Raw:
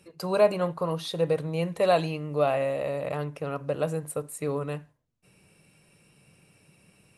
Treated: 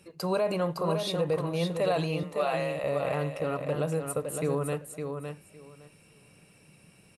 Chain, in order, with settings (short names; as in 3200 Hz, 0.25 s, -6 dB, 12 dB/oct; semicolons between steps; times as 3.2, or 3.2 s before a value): 2.23–2.84 HPF 710 Hz 12 dB/oct; limiter -20.5 dBFS, peak gain reduction 10 dB; feedback echo 0.56 s, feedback 17%, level -6 dB; gain +1 dB